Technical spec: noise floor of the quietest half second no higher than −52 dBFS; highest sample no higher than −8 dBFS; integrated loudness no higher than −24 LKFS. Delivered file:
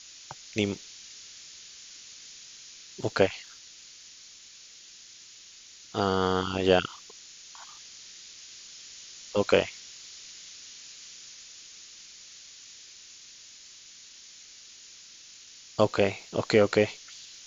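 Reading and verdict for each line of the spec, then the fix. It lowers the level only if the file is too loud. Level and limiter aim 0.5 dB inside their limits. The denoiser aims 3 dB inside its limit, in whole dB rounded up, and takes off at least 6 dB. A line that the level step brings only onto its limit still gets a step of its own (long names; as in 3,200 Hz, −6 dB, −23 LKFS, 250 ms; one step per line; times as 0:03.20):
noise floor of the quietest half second −50 dBFS: out of spec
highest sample −5.0 dBFS: out of spec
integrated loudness −27.0 LKFS: in spec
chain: broadband denoise 6 dB, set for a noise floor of −50 dBFS
brickwall limiter −8.5 dBFS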